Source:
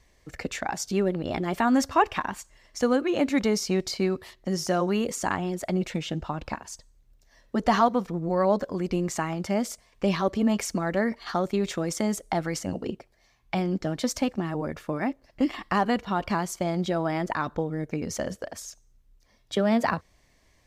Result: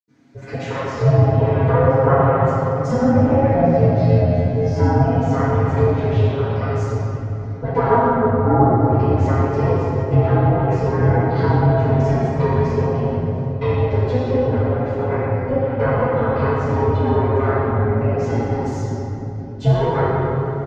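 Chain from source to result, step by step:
ring modulation 260 Hz
comb filter 7.4 ms, depth 87%
0:03.88–0:04.58: phases set to zero 88.5 Hz
treble cut that deepens with the level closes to 1,400 Hz, closed at −23 dBFS
convolution reverb RT60 3.5 s, pre-delay 77 ms, DRR −60 dB
level −1 dB

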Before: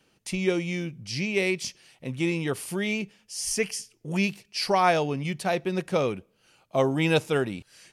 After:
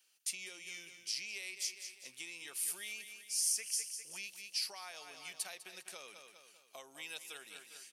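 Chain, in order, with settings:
low-shelf EQ 430 Hz −5.5 dB
on a send: repeating echo 200 ms, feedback 47%, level −12.5 dB
on the sum: downward compressor 12 to 1, threshold −30 dBFS, peak gain reduction 13.5 dB
high-pass filter 140 Hz
first difference
level +1 dB

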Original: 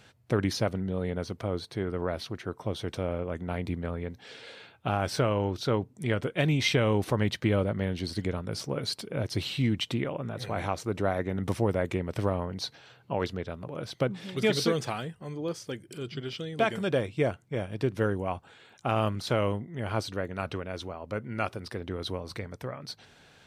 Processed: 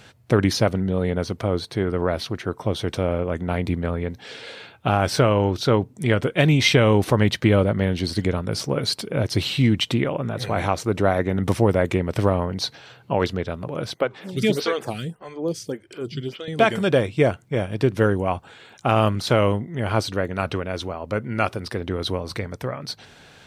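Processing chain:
0:13.94–0:16.48: phaser with staggered stages 1.7 Hz
level +8.5 dB

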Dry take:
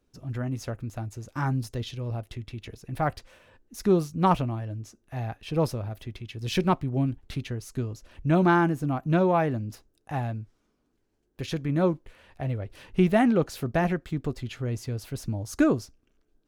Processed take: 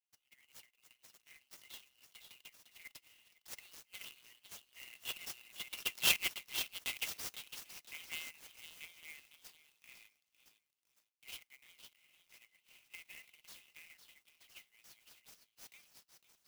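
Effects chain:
source passing by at 0:06.40, 24 m/s, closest 8.5 metres
high-shelf EQ 9,700 Hz −7 dB
in parallel at +0.5 dB: downward compressor, threshold −46 dBFS, peak gain reduction 25.5 dB
on the sum: asymmetric clip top −31 dBFS, bottom −13.5 dBFS
Chebyshev high-pass with heavy ripple 2,000 Hz, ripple 6 dB
echo through a band-pass that steps 506 ms, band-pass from 4,300 Hz, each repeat 0.7 octaves, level −6 dB
buffer that repeats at 0:03.13/0:11.62/0:13.04, samples 1,024, times 1
converter with an unsteady clock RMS 0.034 ms
level +11 dB

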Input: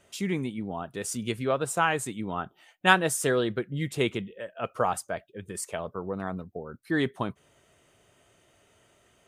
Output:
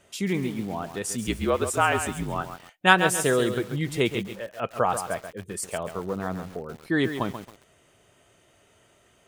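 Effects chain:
0:01.27–0:02.41: frequency shifter −48 Hz
feedback echo at a low word length 136 ms, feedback 35%, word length 7 bits, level −8.5 dB
level +2.5 dB

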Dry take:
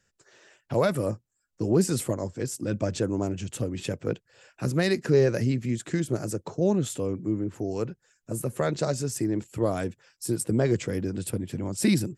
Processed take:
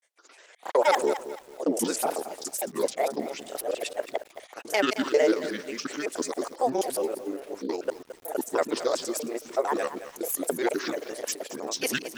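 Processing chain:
reversed piece by piece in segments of 93 ms
high-pass filter 410 Hz 24 dB per octave
granular cloud, spray 28 ms, pitch spread up and down by 7 semitones
feedback echo at a low word length 220 ms, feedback 35%, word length 8 bits, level −12 dB
level +5 dB

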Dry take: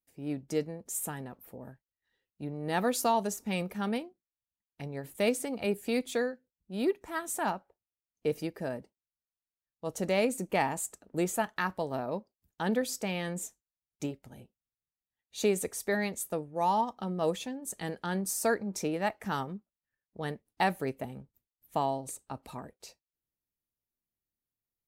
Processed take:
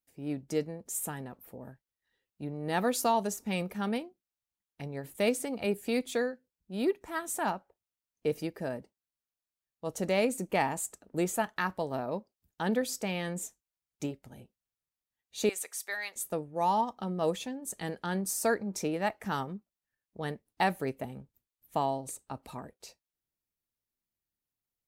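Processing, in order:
0:15.49–0:16.16: high-pass filter 1,200 Hz 12 dB per octave

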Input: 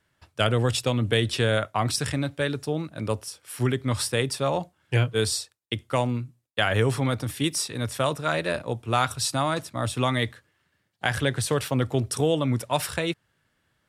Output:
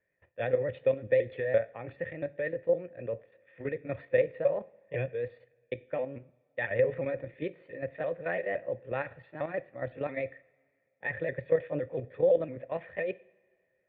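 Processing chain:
pitch shifter swept by a sawtooth +3 semitones, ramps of 171 ms
formant resonators in series e
output level in coarse steps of 10 dB
coupled-rooms reverb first 0.54 s, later 2.3 s, from −18 dB, DRR 16.5 dB
level +9 dB

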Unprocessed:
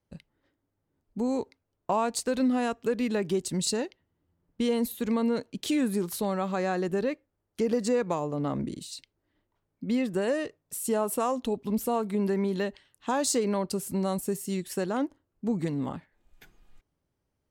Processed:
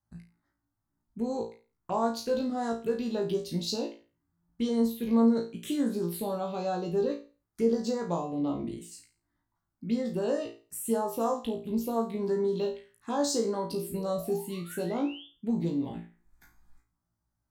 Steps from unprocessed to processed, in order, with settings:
sound drawn into the spectrogram rise, 0:13.70–0:15.27, 280–3,600 Hz −44 dBFS
phaser swept by the level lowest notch 460 Hz, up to 2,600 Hz, full sweep at −22.5 dBFS
flutter between parallel walls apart 3 metres, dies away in 0.34 s
level −3.5 dB

